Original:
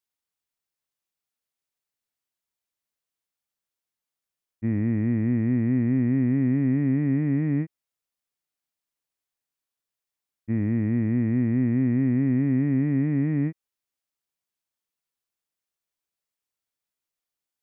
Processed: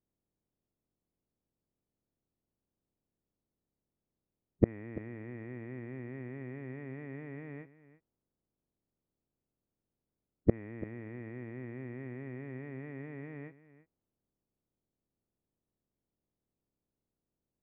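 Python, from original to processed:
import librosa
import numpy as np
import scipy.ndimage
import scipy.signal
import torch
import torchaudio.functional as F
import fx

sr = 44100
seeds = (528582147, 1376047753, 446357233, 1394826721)

p1 = fx.spec_clip(x, sr, under_db=17)
p2 = fx.env_lowpass(p1, sr, base_hz=330.0, full_db=-18.5)
p3 = fx.gate_flip(p2, sr, shuts_db=-27.0, range_db=-37)
p4 = p3 + fx.echo_single(p3, sr, ms=338, db=-16.5, dry=0)
y = p4 * 10.0 ** (16.5 / 20.0)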